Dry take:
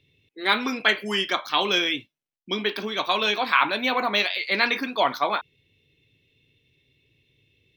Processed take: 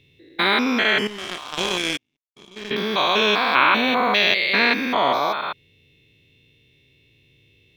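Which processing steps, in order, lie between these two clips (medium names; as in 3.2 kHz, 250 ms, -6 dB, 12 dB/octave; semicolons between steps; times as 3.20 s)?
spectrogram pixelated in time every 200 ms; 1.07–2.71 s: power-law waveshaper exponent 2; trim +8.5 dB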